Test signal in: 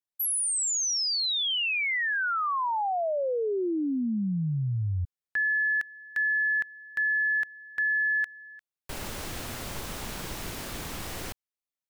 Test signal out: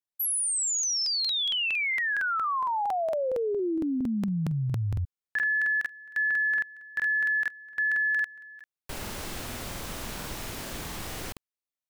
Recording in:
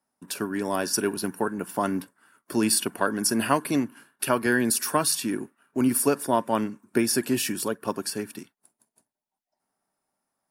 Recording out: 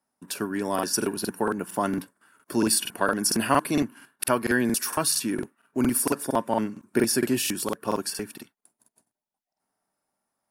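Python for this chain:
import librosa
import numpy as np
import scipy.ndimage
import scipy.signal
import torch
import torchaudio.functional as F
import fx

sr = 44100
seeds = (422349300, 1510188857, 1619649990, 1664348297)

y = fx.buffer_crackle(x, sr, first_s=0.74, period_s=0.23, block=2048, kind='repeat')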